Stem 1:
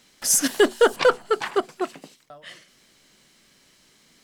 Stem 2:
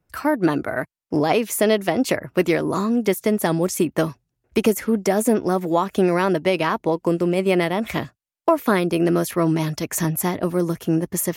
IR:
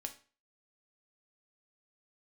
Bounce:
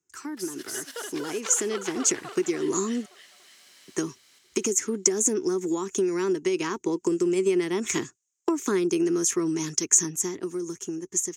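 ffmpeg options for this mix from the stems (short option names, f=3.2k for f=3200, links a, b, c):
-filter_complex "[0:a]acompressor=threshold=-24dB:ratio=3,adelay=150,volume=-3.5dB,asplit=2[a][b];[b]volume=-7dB[c];[1:a]acrossover=split=460[d][e];[e]acompressor=threshold=-27dB:ratio=2[f];[d][f]amix=inputs=2:normalize=0,firequalizer=gain_entry='entry(250,0);entry(380,8);entry(580,-21);entry(920,-9);entry(4400,-9);entry(6600,14);entry(11000,-16)':delay=0.05:min_phase=1,acompressor=threshold=-17dB:ratio=6,volume=-0.5dB,asplit=3[g][h][i];[g]atrim=end=3.06,asetpts=PTS-STARTPTS,afade=t=out:st=3.056:d=0.004:c=hsin[j];[h]atrim=start=3.06:end=3.88,asetpts=PTS-STARTPTS,volume=0[k];[i]atrim=start=3.88,asetpts=PTS-STARTPTS,afade=t=in:d=0.004:c=hsin[l];[j][k][l]concat=n=3:v=0:a=1,asplit=2[m][n];[n]apad=whole_len=193366[o];[a][o]sidechaincompress=threshold=-27dB:ratio=6:attack=8.7:release=827[p];[c]aecho=0:1:288|576|864|1152|1440|1728:1|0.46|0.212|0.0973|0.0448|0.0206[q];[p][m][q]amix=inputs=3:normalize=0,highpass=f=1.3k:p=1,dynaudnorm=f=460:g=9:m=12dB"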